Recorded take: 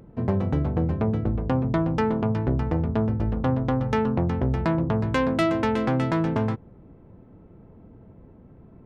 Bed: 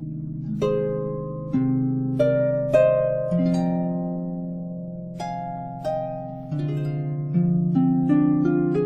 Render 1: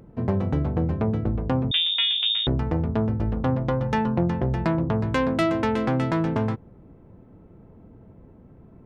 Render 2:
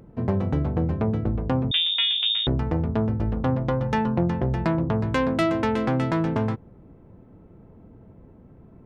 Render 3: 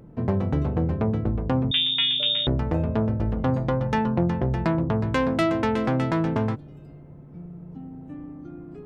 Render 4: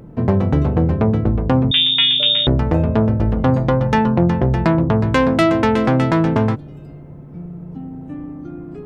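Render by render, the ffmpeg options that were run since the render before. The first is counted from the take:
-filter_complex "[0:a]asettb=1/sr,asplit=3[a][b][c];[a]atrim=end=1.714[d];[b]atrim=start=1.71:end=2.47,asetpts=PTS-STARTPTS,afade=t=in:d=0.004:c=qsin,afade=t=out:st=0.756:d=0.004:c=qsin,lowpass=f=3.2k:t=q:w=0.5098,lowpass=f=3.2k:t=q:w=0.6013,lowpass=f=3.2k:t=q:w=0.9,lowpass=f=3.2k:t=q:w=2.563,afreqshift=-3800[e];[c]atrim=start=2.466[f];[d][e]acrossfade=d=0.004:c1=hsin:c2=qsin[g];[g][f]acrossfade=d=0.004:c1=qsin:c2=hsin,asettb=1/sr,asplit=3[h][i][j];[h]atrim=end=3.554[k];[i]atrim=start=3.55:end=4.67,asetpts=PTS-STARTPTS,afade=t=in:d=0.004:c=qsin,afade=t=out:st=1.116:d=0.004:c=qsin,aecho=1:1:5.7:0.47,atrim=end_sample=49392[l];[j]atrim=start=4.666[m];[k][l]acrossfade=d=0.004:c1=hsin:c2=qsin[n];[n][m]acrossfade=d=0.004:c1=qsin:c2=hsin"
-af anull
-filter_complex "[1:a]volume=-20dB[a];[0:a][a]amix=inputs=2:normalize=0"
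-af "volume=8dB,alimiter=limit=-3dB:level=0:latency=1"

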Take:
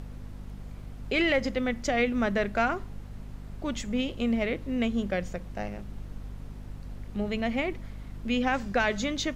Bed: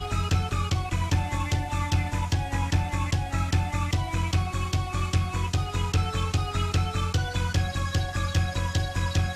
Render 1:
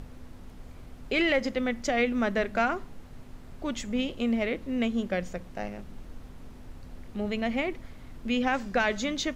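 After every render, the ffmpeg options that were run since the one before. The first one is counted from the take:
-af "bandreject=f=50:t=h:w=4,bandreject=f=100:t=h:w=4,bandreject=f=150:t=h:w=4,bandreject=f=200:t=h:w=4"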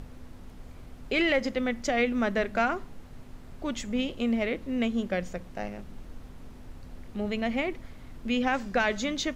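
-af anull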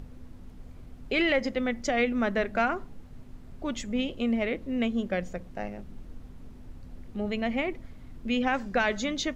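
-af "afftdn=nr=6:nf=-47"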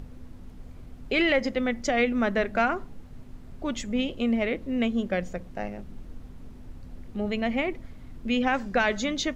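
-af "volume=2dB"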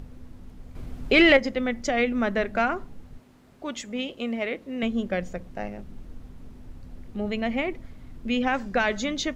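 -filter_complex "[0:a]asettb=1/sr,asplit=3[a][b][c];[a]atrim=end=0.754[d];[b]atrim=start=0.75:end=1.37,asetpts=PTS-STARTPTS,afade=t=in:d=0.004:c=qsin,afade=t=out:st=0.616:d=0.004:c=qsin,acontrast=81[e];[c]atrim=start=1.366[f];[d][e]acrossfade=d=0.004:c1=hsin:c2=qsin[g];[g][f]acrossfade=d=0.004:c1=qsin:c2=hsin,asettb=1/sr,asplit=3[h][i][j];[h]atrim=end=3.184[k];[i]atrim=start=3.18:end=4.83,asetpts=PTS-STARTPTS,afade=t=in:d=0.004:c=qsin,afade=t=out:st=1.646:d=0.004:c=qsin,highpass=f=370:p=1[l];[j]atrim=start=4.826[m];[k][l]acrossfade=d=0.004:c1=hsin:c2=qsin[n];[n][m]acrossfade=d=0.004:c1=qsin:c2=hsin"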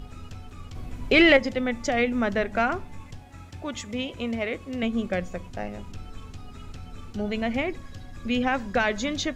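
-filter_complex "[1:a]volume=-18dB[a];[0:a][a]amix=inputs=2:normalize=0"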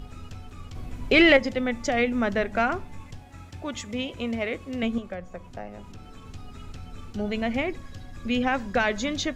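-filter_complex "[0:a]asettb=1/sr,asplit=3[a][b][c];[a]atrim=end=4.984[d];[b]atrim=start=4.98:end=6.26,asetpts=PTS-STARTPTS,afade=t=in:d=0.004:c=qsin,afade=t=out:st=1.276:d=0.004:c=qsin,acrossover=split=120|610|1400[e][f][g][h];[e]acompressor=threshold=-45dB:ratio=3[i];[f]acompressor=threshold=-42dB:ratio=3[j];[g]acompressor=threshold=-37dB:ratio=3[k];[h]acompressor=threshold=-54dB:ratio=3[l];[i][j][k][l]amix=inputs=4:normalize=0[m];[c]atrim=start=6.256[n];[d][m]acrossfade=d=0.004:c1=hsin:c2=qsin[o];[o][n]acrossfade=d=0.004:c1=qsin:c2=hsin"

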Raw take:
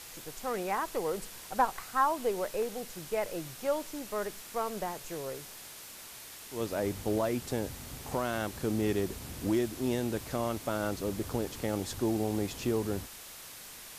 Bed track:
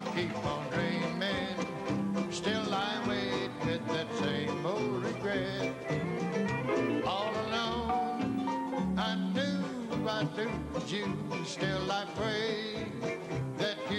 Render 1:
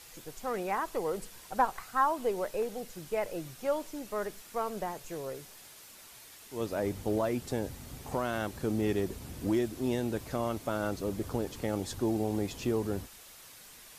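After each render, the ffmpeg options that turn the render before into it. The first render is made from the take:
-af "afftdn=nr=6:nf=-48"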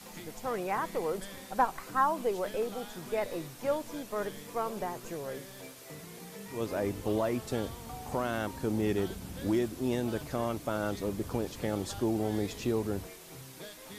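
-filter_complex "[1:a]volume=-14.5dB[a];[0:a][a]amix=inputs=2:normalize=0"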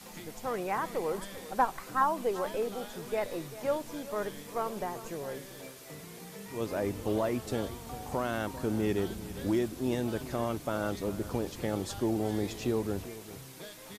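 -af "aecho=1:1:394:0.168"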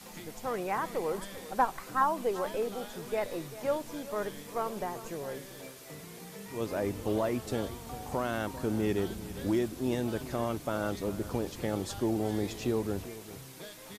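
-af anull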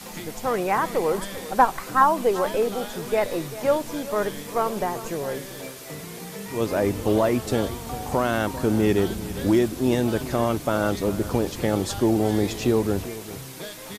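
-af "volume=9.5dB"

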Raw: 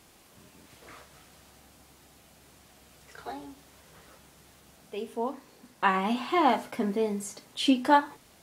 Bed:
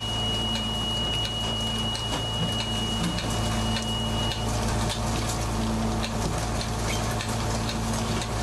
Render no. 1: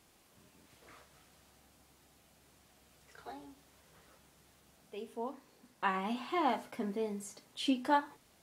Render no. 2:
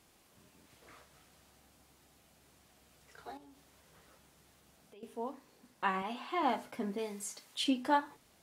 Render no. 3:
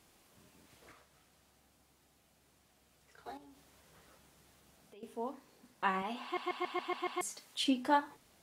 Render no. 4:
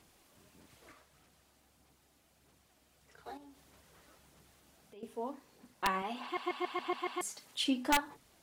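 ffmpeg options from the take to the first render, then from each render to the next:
-af "volume=-8.5dB"
-filter_complex "[0:a]asettb=1/sr,asplit=3[a][b][c];[a]atrim=end=3.374[d];[b]atrim=start=3.37:end=5.03,asetpts=PTS-STARTPTS,afade=t=in:d=0.004:c=qsin,afade=t=out:st=1.656:d=0.004:c=qsin,acompressor=threshold=-55dB:ratio=4:attack=3.2:release=140:knee=1:detection=peak[e];[c]atrim=start=5.026[f];[d][e]acrossfade=d=0.004:c1=hsin:c2=qsin[g];[g][f]acrossfade=d=0.004:c1=qsin:c2=hsin,asettb=1/sr,asplit=3[h][i][j];[h]atrim=end=6.024[k];[i]atrim=start=6.02:end=6.43,asetpts=PTS-STARTPTS,afade=t=in:d=0.004:c=qsin,afade=t=out:st=0.406:d=0.004:c=qsin,bass=f=250:g=-13,treble=f=4k:g=-3[l];[j]atrim=start=6.426[m];[k][l]acrossfade=d=0.004:c1=hsin:c2=qsin[n];[n][m]acrossfade=d=0.004:c1=qsin:c2=hsin,asettb=1/sr,asplit=3[o][p][q];[o]atrim=end=6.984[r];[p]atrim=start=6.98:end=7.64,asetpts=PTS-STARTPTS,afade=t=in:d=0.004:c=qsin,afade=t=out:st=0.656:d=0.004:c=qsin,tiltshelf=f=770:g=-6[s];[q]atrim=start=7.636[t];[r][s]acrossfade=d=0.004:c1=hsin:c2=qsin[u];[u][t]acrossfade=d=0.004:c1=qsin:c2=hsin"
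-filter_complex "[0:a]asplit=10[a][b][c][d][e][f][g][h][i][j];[a]atrim=end=0.922[k];[b]atrim=start=0.918:end=3.262,asetpts=PTS-STARTPTS,volume=-4.5dB[l];[c]atrim=start=3.258:end=6.372[m];[d]atrim=start=6.228:end=6.372[n];[e]atrim=start=6.228:end=6.372[o];[f]atrim=start=6.228:end=6.372[p];[g]atrim=start=6.228:end=6.372[q];[h]atrim=start=6.228:end=6.372[r];[i]atrim=start=6.228:end=6.372[s];[j]atrim=start=7.208[t];[k][l]acrossfade=d=0.004:c1=hsin:c2=hsin[u];[u][m]acrossfade=d=0.004:c1=hsin:c2=hsin[v];[v][n]acrossfade=d=0.004:c1=hsin:c2=hsin[w];[w][o]acrossfade=d=0.004:c1=hsin:c2=hsin[x];[x][p]acrossfade=d=0.004:c1=hsin:c2=hsin[y];[y][q]acrossfade=d=0.004:c1=hsin:c2=hsin[z];[z][r]acrossfade=d=0.004:c1=hsin:c2=hsin[aa];[aa][s]acrossfade=d=0.004:c1=hsin:c2=hsin[ab];[ab][t]acrossfade=d=0.004:c1=hsin:c2=hsin"
-af "aeval=exprs='(mod(9.44*val(0)+1,2)-1)/9.44':c=same,aphaser=in_gain=1:out_gain=1:delay=3.5:decay=0.31:speed=1.6:type=sinusoidal"

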